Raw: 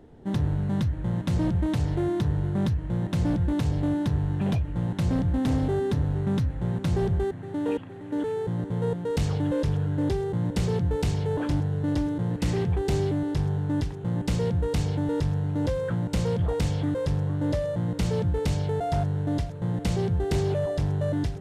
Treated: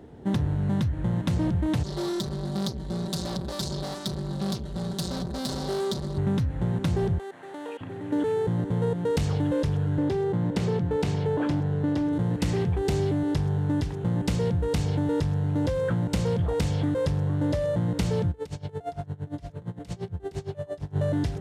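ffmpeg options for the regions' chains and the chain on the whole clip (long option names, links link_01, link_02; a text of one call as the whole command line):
ffmpeg -i in.wav -filter_complex "[0:a]asettb=1/sr,asplit=3[link_01][link_02][link_03];[link_01]atrim=end=1.834[link_04];[link_02]atrim=start=1.83:end=6.18,asetpts=PTS-STARTPTS,afade=type=in:duration=0.004:curve=qsin,afade=type=out:start_time=4.346:duration=0.004:curve=qsin,aeval=exprs='(tanh(50.1*val(0)+0.75)-tanh(0.75))/50.1':channel_layout=same,highshelf=frequency=3200:width_type=q:width=3:gain=9,aecho=1:1:5.2:0.82,atrim=end_sample=191835[link_05];[link_03]atrim=start=6.176[link_06];[link_04][link_05]acrossfade=duration=0.004:curve1=hsin:curve2=qsin[link_07];[link_07][link_06]acrossfade=duration=0.004:curve1=qsin:curve2=hsin,asettb=1/sr,asplit=3[link_08][link_09][link_10];[link_08]atrim=end=7.184[link_11];[link_09]atrim=start=7.18:end=7.81,asetpts=PTS-STARTPTS,afade=type=in:duration=0.004:curve=qsin,afade=type=out:start_time=0.626:duration=0.004:curve=qsin,highpass=600,acompressor=threshold=-38dB:ratio=4:attack=3.2:release=140:knee=1:detection=peak[link_12];[link_10]atrim=start=7.806[link_13];[link_11][link_12]acrossfade=duration=0.004:curve1=hsin:curve2=qsin[link_14];[link_14][link_13]acrossfade=duration=0.004:curve1=qsin:curve2=hsin,asettb=1/sr,asplit=3[link_15][link_16][link_17];[link_15]atrim=end=9.984[link_18];[link_16]atrim=start=9.98:end=12.13,asetpts=PTS-STARTPTS,afade=type=in:duration=0.004:curve=qsin,afade=type=out:start_time=2.146:duration=0.004:curve=qsin,highpass=120,aemphasis=mode=reproduction:type=cd[link_19];[link_17]atrim=start=12.126[link_20];[link_18][link_19]acrossfade=duration=0.004:curve1=hsin:curve2=qsin[link_21];[link_21][link_20]acrossfade=duration=0.004:curve1=qsin:curve2=hsin,asettb=1/sr,asplit=3[link_22][link_23][link_24];[link_22]atrim=end=18.314[link_25];[link_23]atrim=start=18.31:end=20.96,asetpts=PTS-STARTPTS,afade=type=in:duration=0.004:curve=qsin,afade=type=out:start_time=2.646:duration=0.004:curve=qsin,acompressor=threshold=-30dB:ratio=6:attack=3.2:release=140:knee=1:detection=peak,aeval=exprs='val(0)*pow(10,-22*(0.5-0.5*cos(2*PI*8.7*n/s))/20)':channel_layout=same[link_26];[link_24]atrim=start=20.956[link_27];[link_25][link_26]acrossfade=duration=0.004:curve1=hsin:curve2=qsin[link_28];[link_28][link_27]acrossfade=duration=0.004:curve1=qsin:curve2=hsin,acompressor=threshold=-26dB:ratio=6,highpass=52,volume=4.5dB" out.wav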